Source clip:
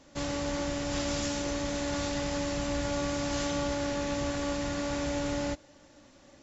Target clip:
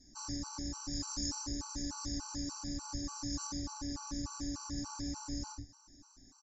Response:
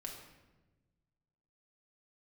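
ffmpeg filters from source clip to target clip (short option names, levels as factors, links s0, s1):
-filter_complex "[0:a]aemphasis=mode=reproduction:type=75fm,acompressor=threshold=0.0224:ratio=4,firequalizer=gain_entry='entry(110,0);entry(160,-11);entry(230,-6);entry(370,-8);entry(530,-29);entry(930,-3);entry(2100,-16);entry(3100,-18);entry(5000,14)':delay=0.05:min_phase=1[s0];[1:a]atrim=start_sample=2205,afade=t=out:st=0.16:d=0.01,atrim=end_sample=7497[s1];[s0][s1]afir=irnorm=-1:irlink=0,afftfilt=real='re*gt(sin(2*PI*3.4*pts/sr)*(1-2*mod(floor(b*sr/1024/790),2)),0)':imag='im*gt(sin(2*PI*3.4*pts/sr)*(1-2*mod(floor(b*sr/1024/790),2)),0)':win_size=1024:overlap=0.75,volume=1.88"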